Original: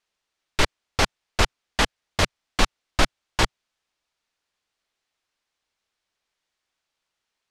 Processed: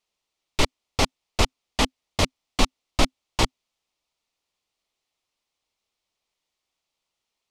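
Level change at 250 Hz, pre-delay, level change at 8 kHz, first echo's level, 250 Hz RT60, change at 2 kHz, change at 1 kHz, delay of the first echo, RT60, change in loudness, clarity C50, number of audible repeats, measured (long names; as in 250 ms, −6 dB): +2.0 dB, no reverb audible, 0.0 dB, no echo audible, no reverb audible, −4.5 dB, −1.5 dB, no echo audible, no reverb audible, −1.0 dB, no reverb audible, no echo audible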